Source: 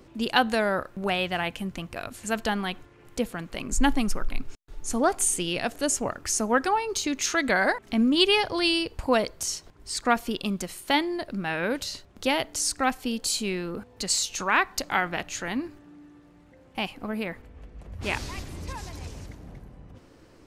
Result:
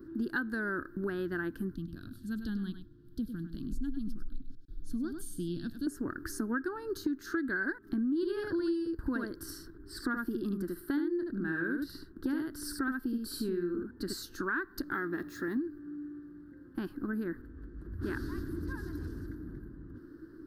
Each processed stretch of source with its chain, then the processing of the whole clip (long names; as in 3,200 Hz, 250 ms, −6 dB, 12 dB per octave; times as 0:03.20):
0:01.75–0:05.87: drawn EQ curve 200 Hz 0 dB, 370 Hz −15 dB, 2,100 Hz −19 dB, 3,400 Hz +4 dB, 7,300 Hz −8 dB + single-tap delay 100 ms −10 dB
0:08.15–0:14.13: notch filter 6,600 Hz, Q 6.9 + single-tap delay 74 ms −3.5 dB + one half of a high-frequency compander decoder only
0:14.94–0:15.57: mu-law and A-law mismatch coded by mu + parametric band 1,600 Hz +3 dB 0.22 octaves + notch comb filter 1,500 Hz
whole clip: drawn EQ curve 200 Hz 0 dB, 330 Hz +13 dB, 520 Hz −13 dB, 750 Hz −20 dB, 1,600 Hz +7 dB, 2,300 Hz −28 dB, 4,500 Hz −10 dB, 7,000 Hz −22 dB, 13,000 Hz 0 dB; downward compressor 5 to 1, threshold −29 dBFS; level −2 dB